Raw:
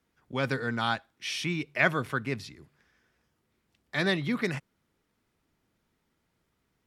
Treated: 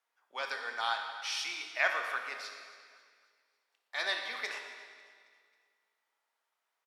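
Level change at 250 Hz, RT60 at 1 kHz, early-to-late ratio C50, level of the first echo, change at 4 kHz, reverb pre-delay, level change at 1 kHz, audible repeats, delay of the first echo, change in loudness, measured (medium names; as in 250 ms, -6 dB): -28.5 dB, 2.0 s, 5.0 dB, -19.5 dB, -1.0 dB, 19 ms, -2.5 dB, 3, 272 ms, -5.0 dB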